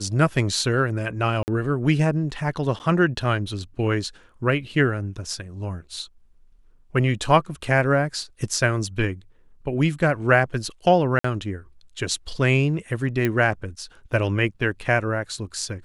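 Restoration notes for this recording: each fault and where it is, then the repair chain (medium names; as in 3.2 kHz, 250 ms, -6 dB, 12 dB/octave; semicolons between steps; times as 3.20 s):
1.43–1.48 s: dropout 49 ms
2.79–2.80 s: dropout 9.5 ms
11.19–11.24 s: dropout 54 ms
13.25 s: pop -10 dBFS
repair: de-click; interpolate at 1.43 s, 49 ms; interpolate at 2.79 s, 9.5 ms; interpolate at 11.19 s, 54 ms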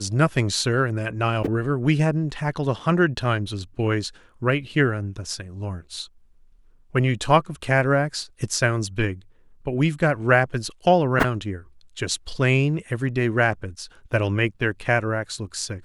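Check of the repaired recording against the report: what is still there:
13.25 s: pop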